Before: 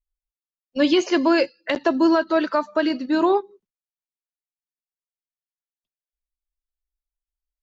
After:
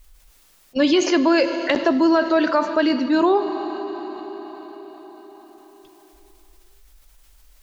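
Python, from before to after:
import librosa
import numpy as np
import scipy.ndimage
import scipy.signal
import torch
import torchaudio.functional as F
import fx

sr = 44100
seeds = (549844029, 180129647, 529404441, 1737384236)

y = fx.rev_schroeder(x, sr, rt60_s=2.9, comb_ms=29, drr_db=15.5)
y = fx.env_flatten(y, sr, amount_pct=50)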